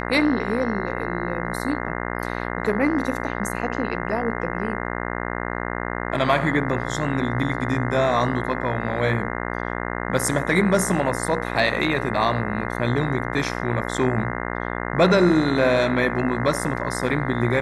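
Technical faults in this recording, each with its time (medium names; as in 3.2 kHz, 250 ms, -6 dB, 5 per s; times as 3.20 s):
buzz 60 Hz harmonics 35 -28 dBFS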